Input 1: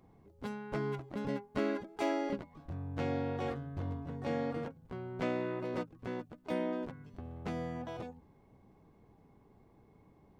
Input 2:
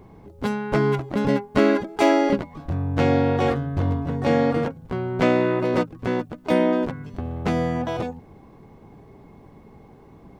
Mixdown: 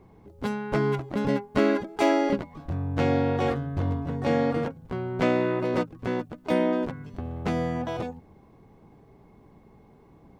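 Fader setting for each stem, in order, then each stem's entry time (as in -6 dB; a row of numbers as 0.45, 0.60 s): +1.0, -7.5 dB; 0.00, 0.00 s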